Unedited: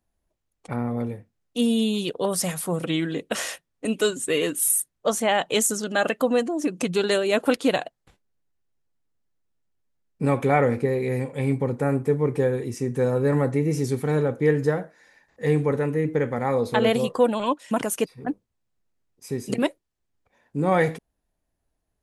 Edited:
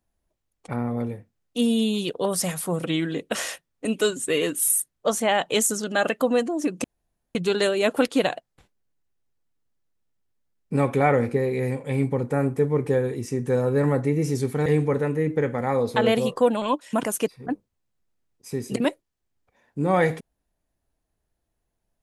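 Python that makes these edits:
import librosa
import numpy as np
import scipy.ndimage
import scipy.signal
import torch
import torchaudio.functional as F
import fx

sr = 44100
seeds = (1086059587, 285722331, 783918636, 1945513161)

y = fx.edit(x, sr, fx.insert_room_tone(at_s=6.84, length_s=0.51),
    fx.cut(start_s=14.15, length_s=1.29), tone=tone)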